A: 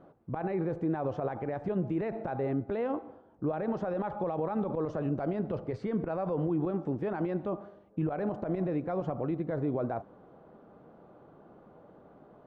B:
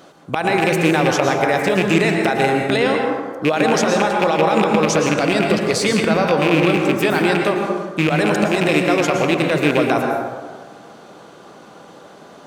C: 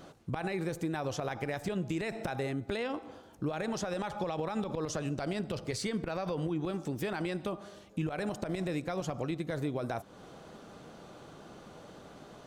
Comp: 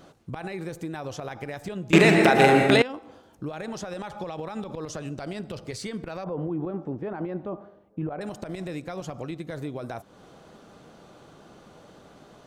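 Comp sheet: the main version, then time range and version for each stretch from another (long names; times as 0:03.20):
C
0:01.93–0:02.82: punch in from B
0:06.24–0:08.21: punch in from A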